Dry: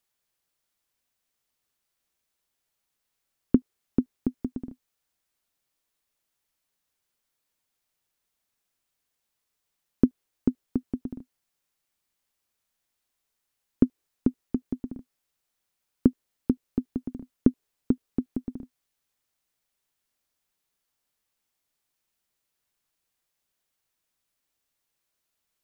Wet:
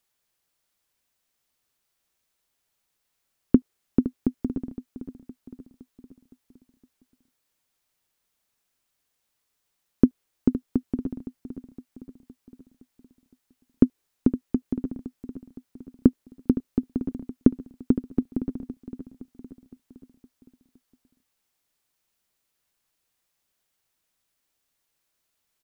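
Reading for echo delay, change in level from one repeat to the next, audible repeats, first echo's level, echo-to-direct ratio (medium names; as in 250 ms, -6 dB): 514 ms, -5.5 dB, 4, -13.0 dB, -11.5 dB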